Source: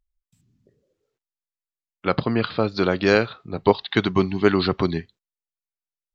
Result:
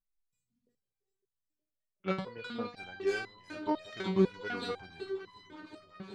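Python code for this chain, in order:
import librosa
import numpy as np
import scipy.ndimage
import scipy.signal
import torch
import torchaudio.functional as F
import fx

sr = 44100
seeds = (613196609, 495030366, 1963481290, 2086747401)

y = fx.self_delay(x, sr, depth_ms=0.08)
y = fx.echo_alternate(y, sr, ms=185, hz=830.0, feedback_pct=88, wet_db=-10)
y = fx.resonator_held(y, sr, hz=4.0, low_hz=190.0, high_hz=1000.0)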